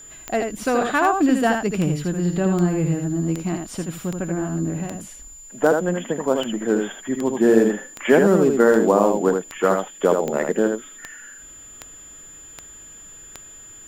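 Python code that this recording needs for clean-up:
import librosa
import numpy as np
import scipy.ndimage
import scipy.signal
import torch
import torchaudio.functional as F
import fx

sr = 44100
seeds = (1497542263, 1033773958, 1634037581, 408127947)

y = fx.fix_declick_ar(x, sr, threshold=10.0)
y = fx.notch(y, sr, hz=7100.0, q=30.0)
y = fx.fix_echo_inverse(y, sr, delay_ms=79, level_db=-5.0)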